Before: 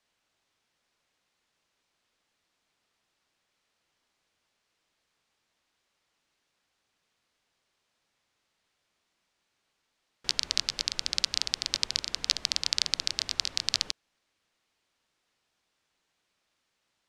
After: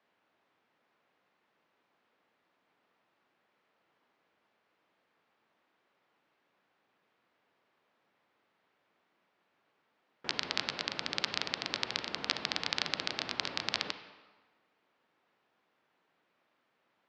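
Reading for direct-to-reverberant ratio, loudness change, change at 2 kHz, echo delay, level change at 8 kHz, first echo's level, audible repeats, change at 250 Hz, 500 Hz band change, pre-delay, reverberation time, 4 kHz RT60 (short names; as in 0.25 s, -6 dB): 9.0 dB, -6.0 dB, +2.0 dB, none, -14.0 dB, none, none, +6.0 dB, +7.0 dB, 33 ms, 1.3 s, 1.0 s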